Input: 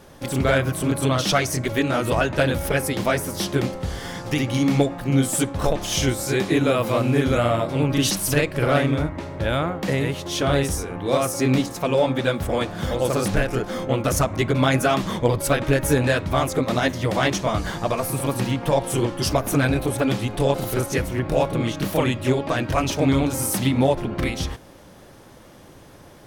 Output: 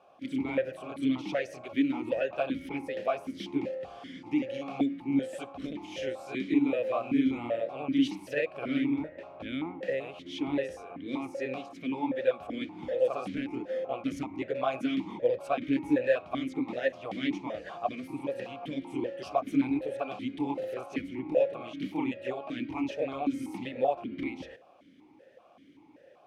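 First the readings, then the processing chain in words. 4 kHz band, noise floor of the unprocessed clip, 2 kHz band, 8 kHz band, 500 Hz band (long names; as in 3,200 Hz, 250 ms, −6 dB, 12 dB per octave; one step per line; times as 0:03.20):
−16.0 dB, −46 dBFS, −13.0 dB, below −25 dB, −9.0 dB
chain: formant filter that steps through the vowels 5.2 Hz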